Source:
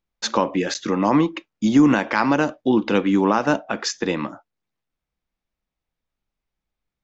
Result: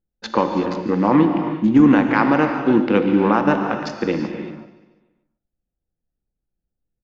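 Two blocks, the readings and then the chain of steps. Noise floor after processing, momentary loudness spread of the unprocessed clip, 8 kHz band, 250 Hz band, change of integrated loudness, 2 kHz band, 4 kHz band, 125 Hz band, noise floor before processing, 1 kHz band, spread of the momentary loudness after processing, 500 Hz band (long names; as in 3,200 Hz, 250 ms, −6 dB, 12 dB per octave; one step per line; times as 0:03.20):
−83 dBFS, 9 LU, can't be measured, +3.0 dB, +2.5 dB, +1.0 dB, −6.0 dB, +3.5 dB, −85 dBFS, +2.0 dB, 11 LU, +2.5 dB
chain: adaptive Wiener filter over 41 samples
low-pass filter 3,100 Hz 12 dB per octave
notch filter 640 Hz, Q 12
repeating echo 145 ms, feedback 51%, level −16 dB
reverb whose tail is shaped and stops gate 410 ms flat, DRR 5 dB
level +2.5 dB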